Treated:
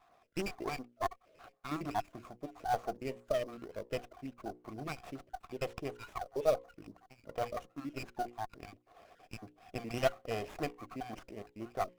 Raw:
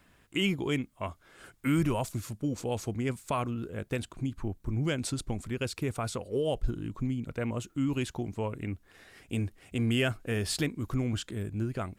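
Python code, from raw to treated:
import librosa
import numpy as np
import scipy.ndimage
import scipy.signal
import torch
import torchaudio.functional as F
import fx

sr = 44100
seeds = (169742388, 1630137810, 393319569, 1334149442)

p1 = fx.spec_dropout(x, sr, seeds[0], share_pct=44)
p2 = fx.vowel_filter(p1, sr, vowel='a')
p3 = fx.sample_hold(p2, sr, seeds[1], rate_hz=5300.0, jitter_pct=20)
p4 = p2 + (p3 * librosa.db_to_amplitude(-7.0))
p5 = scipy.signal.sosfilt(scipy.signal.butter(2, 110.0, 'highpass', fs=sr, output='sos'), p4)
p6 = fx.hum_notches(p5, sr, base_hz=60, count=9)
p7 = fx.running_max(p6, sr, window=9)
y = p7 * librosa.db_to_amplitude(10.0)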